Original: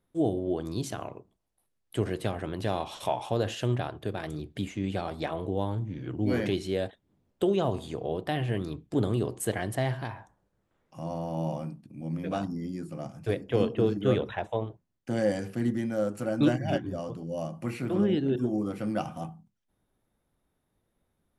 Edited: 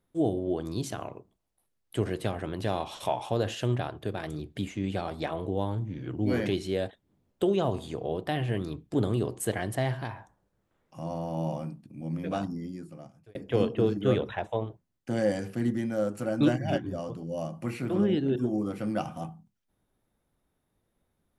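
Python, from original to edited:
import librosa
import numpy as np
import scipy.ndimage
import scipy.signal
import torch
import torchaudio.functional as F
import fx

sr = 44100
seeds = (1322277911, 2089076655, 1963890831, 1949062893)

y = fx.edit(x, sr, fx.fade_out_span(start_s=12.44, length_s=0.91), tone=tone)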